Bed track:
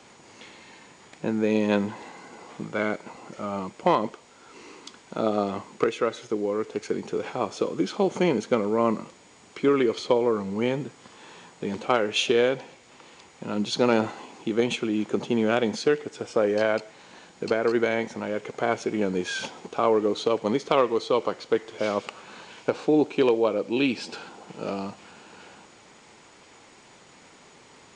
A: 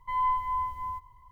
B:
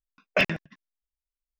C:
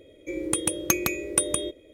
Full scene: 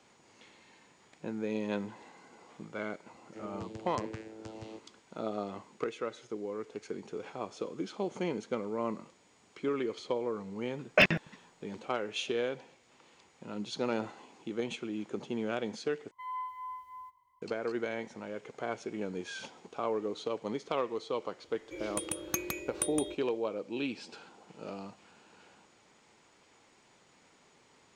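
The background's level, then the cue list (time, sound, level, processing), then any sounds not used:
bed track -11.5 dB
3.07 s: add C -14 dB + vocoder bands 8, saw 110 Hz
10.61 s: add B
16.11 s: replace with A -9.5 dB + high-pass 870 Hz 6 dB/octave
21.44 s: add C -10.5 dB

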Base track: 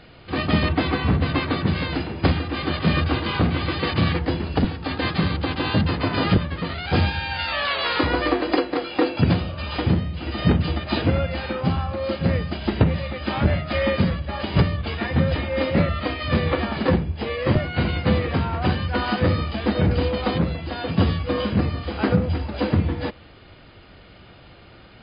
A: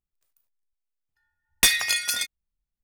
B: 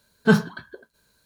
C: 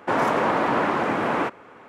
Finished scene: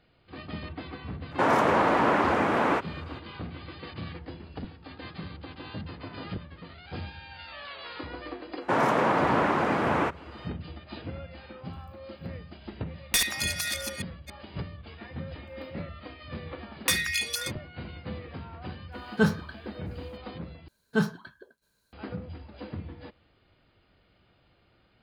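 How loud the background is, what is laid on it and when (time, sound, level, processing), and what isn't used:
base track -18 dB
1.31 s: add C -1 dB
8.61 s: add C -2.5 dB + peaking EQ 140 Hz +4.5 dB
11.51 s: add A -7 dB + chunks repeated in reverse 279 ms, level -3.5 dB
15.25 s: add A -8.5 dB + LFO high-pass saw up 1.9 Hz 890–3600 Hz
18.92 s: add B -6 dB
20.68 s: replace with B -8.5 dB

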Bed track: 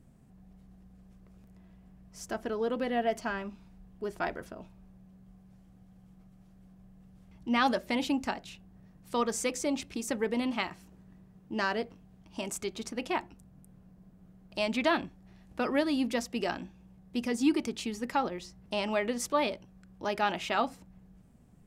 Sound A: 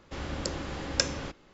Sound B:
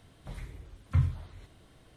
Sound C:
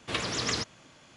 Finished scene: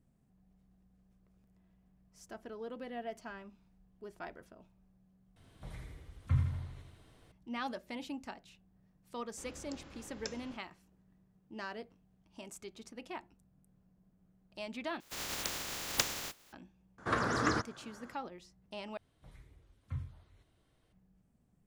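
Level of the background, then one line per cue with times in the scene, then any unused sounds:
bed track -12.5 dB
5.36 s: replace with B -5 dB + feedback delay 81 ms, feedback 58%, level -5 dB
9.26 s: add A -17.5 dB
15.00 s: replace with A -4.5 dB + spectral contrast reduction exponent 0.14
16.98 s: add C + resonant high shelf 2 kHz -10 dB, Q 3
18.97 s: replace with B -14.5 dB

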